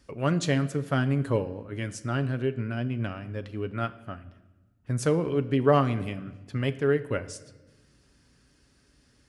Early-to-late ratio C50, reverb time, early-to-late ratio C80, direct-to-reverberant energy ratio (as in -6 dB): 15.5 dB, 1.2 s, 17.5 dB, 9.0 dB